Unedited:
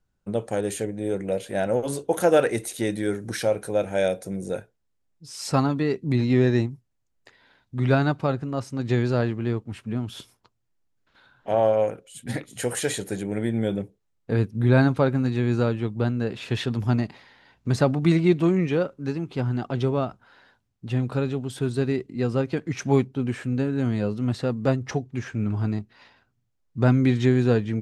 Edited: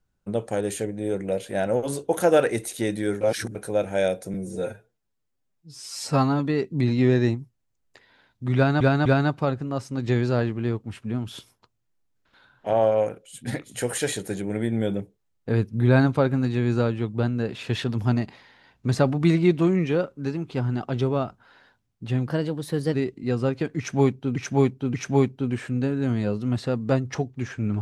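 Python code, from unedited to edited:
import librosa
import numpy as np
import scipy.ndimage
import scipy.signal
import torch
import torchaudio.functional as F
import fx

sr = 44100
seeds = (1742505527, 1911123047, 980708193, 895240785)

y = fx.edit(x, sr, fx.reverse_span(start_s=3.21, length_s=0.34),
    fx.stretch_span(start_s=4.34, length_s=1.37, factor=1.5),
    fx.repeat(start_s=7.87, length_s=0.25, count=3),
    fx.speed_span(start_s=21.09, length_s=0.77, speed=1.16),
    fx.repeat(start_s=22.7, length_s=0.58, count=3), tone=tone)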